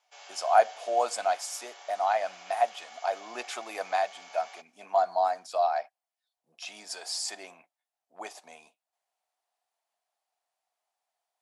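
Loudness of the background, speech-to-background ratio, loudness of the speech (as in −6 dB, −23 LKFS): −48.0 LKFS, 18.5 dB, −29.5 LKFS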